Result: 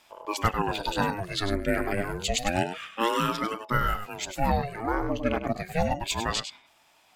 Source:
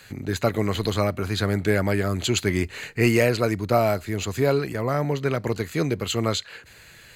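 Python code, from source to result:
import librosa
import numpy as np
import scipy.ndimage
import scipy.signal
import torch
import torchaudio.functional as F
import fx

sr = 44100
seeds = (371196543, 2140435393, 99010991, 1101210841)

p1 = fx.noise_reduce_blind(x, sr, reduce_db=12)
p2 = fx.rider(p1, sr, range_db=5, speed_s=0.5)
p3 = p2 + fx.echo_single(p2, sr, ms=100, db=-9.0, dry=0)
y = fx.ring_lfo(p3, sr, carrier_hz=470.0, swing_pct=65, hz=0.29)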